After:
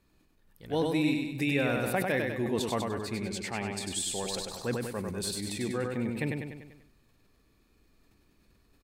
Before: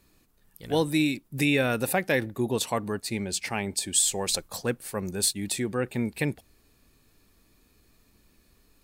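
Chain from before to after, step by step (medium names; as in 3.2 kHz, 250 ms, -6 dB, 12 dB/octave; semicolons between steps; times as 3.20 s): treble shelf 5.3 kHz -10 dB; on a send: feedback delay 98 ms, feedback 49%, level -4 dB; on the sum: decay stretcher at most 54 dB/s; trim -5 dB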